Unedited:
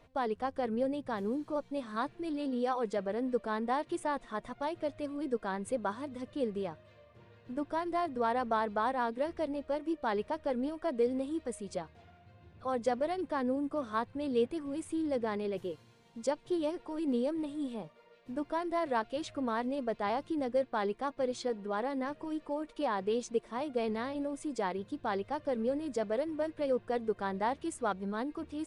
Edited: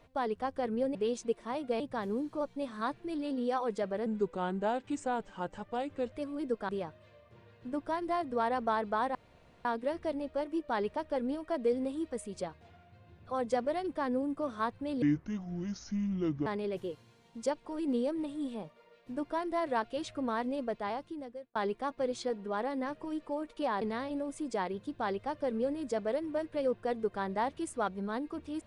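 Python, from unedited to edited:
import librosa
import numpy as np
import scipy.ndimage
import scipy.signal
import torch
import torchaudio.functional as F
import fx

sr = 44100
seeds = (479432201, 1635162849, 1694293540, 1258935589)

y = fx.edit(x, sr, fx.speed_span(start_s=3.21, length_s=1.73, speed=0.84),
    fx.cut(start_s=5.51, length_s=1.02),
    fx.insert_room_tone(at_s=8.99, length_s=0.5),
    fx.speed_span(start_s=14.36, length_s=0.91, speed=0.63),
    fx.cut(start_s=16.46, length_s=0.39),
    fx.fade_out_span(start_s=19.79, length_s=0.96),
    fx.move(start_s=23.01, length_s=0.85, to_s=0.95), tone=tone)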